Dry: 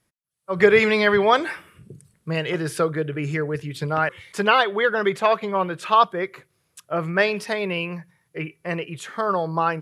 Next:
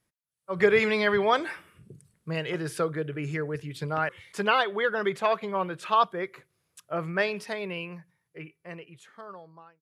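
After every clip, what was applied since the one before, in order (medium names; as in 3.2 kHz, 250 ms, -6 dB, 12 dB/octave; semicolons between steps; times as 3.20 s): fade out at the end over 2.85 s; trim -6 dB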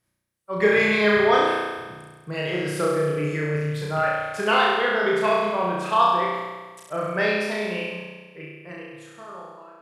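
flutter echo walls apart 5.7 m, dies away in 1.4 s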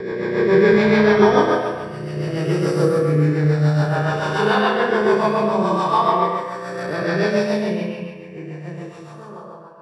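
reverse spectral sustain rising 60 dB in 2.46 s; rotary cabinet horn 7 Hz; reverberation RT60 0.70 s, pre-delay 116 ms, DRR 2.5 dB; trim -8 dB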